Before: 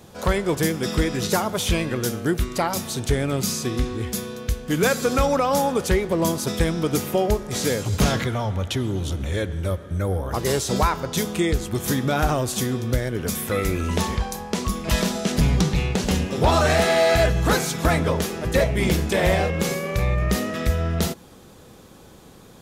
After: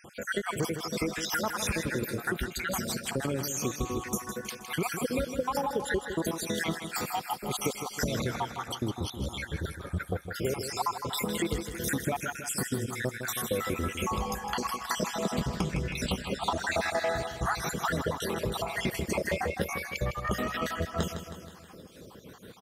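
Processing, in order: random spectral dropouts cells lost 67%; HPF 97 Hz 6 dB/oct; bell 1200 Hz +4.5 dB 1.5 oct; compressor, threshold -27 dBFS, peak gain reduction 12.5 dB; feedback echo 0.159 s, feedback 55%, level -9 dB

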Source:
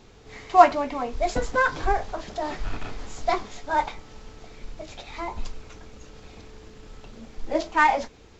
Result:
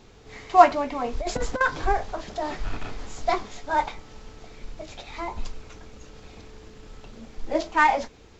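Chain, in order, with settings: 1.04–1.61 negative-ratio compressor -25 dBFS, ratio -0.5

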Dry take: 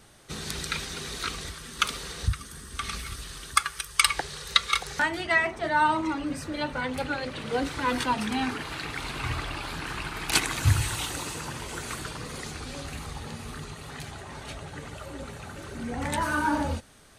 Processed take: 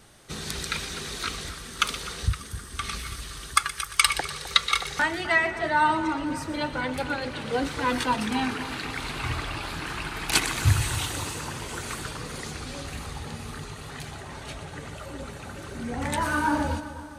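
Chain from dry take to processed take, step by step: split-band echo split 1700 Hz, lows 0.258 s, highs 0.122 s, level -12.5 dB; gain +1 dB

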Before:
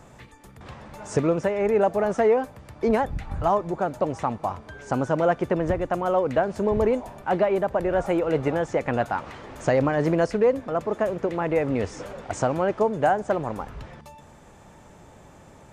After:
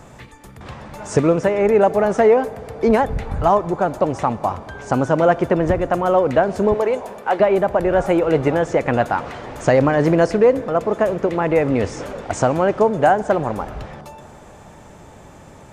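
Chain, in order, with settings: 6.74–7.4 HPF 490 Hz 12 dB/oct; on a send: reverb RT60 3.8 s, pre-delay 38 ms, DRR 18 dB; on the sum: gain +6.5 dB

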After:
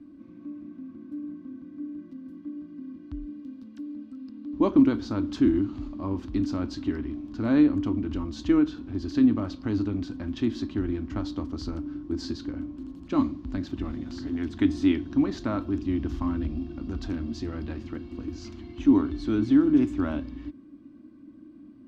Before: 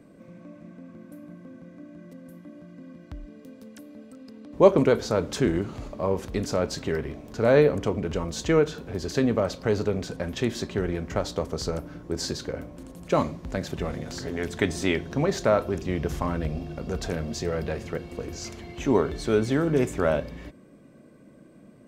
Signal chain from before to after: EQ curve 100 Hz 0 dB, 160 Hz -12 dB, 300 Hz +11 dB, 440 Hz -19 dB, 1100 Hz -5 dB, 2100 Hz -11 dB, 3000 Hz -6 dB, 4600 Hz -7 dB, 9500 Hz -24 dB

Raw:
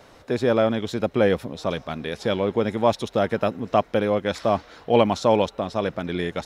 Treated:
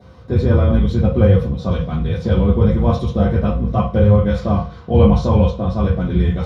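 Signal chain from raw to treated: octaver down 2 oct, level +1 dB; in parallel at +1 dB: limiter -13 dBFS, peak gain reduction 10 dB; on the sum: reverb RT60 0.40 s, pre-delay 3 ms, DRR -6.5 dB; gain -18 dB

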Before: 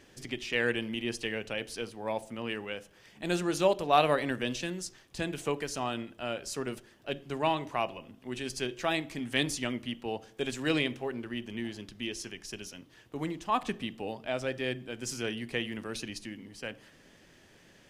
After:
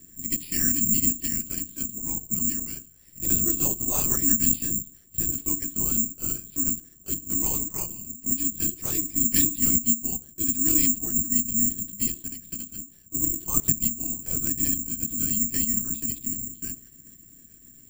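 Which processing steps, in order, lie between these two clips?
resonant low shelf 360 Hz +11.5 dB, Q 3; LPC vocoder at 8 kHz whisper; careless resampling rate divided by 6×, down none, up zero stuff; gain -10.5 dB

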